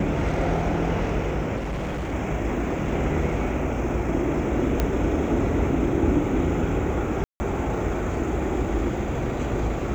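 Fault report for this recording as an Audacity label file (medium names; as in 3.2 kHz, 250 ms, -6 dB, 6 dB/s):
1.560000	2.130000	clipped -25.5 dBFS
4.800000	4.800000	pop -9 dBFS
7.240000	7.400000	dropout 160 ms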